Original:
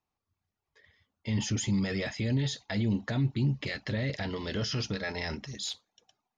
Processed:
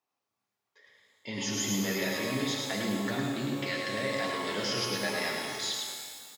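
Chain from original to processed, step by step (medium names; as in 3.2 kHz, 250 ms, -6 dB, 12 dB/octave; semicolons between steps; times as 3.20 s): high-pass 310 Hz 12 dB/octave; on a send: delay 106 ms -4.5 dB; on the sum: pitch-shifted reverb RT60 1.9 s, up +12 st, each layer -8 dB, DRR 0.5 dB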